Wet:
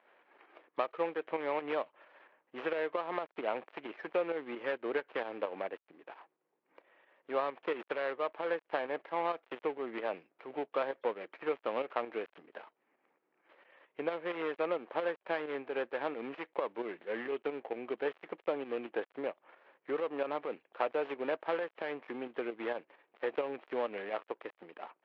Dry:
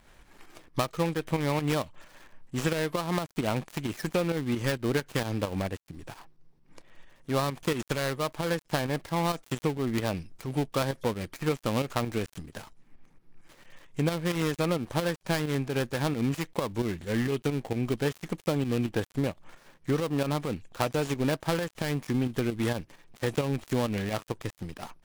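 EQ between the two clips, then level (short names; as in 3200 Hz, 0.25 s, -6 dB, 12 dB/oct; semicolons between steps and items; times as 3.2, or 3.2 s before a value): ladder high-pass 350 Hz, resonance 25%; LPF 2800 Hz 24 dB/oct; air absorption 73 m; +1.5 dB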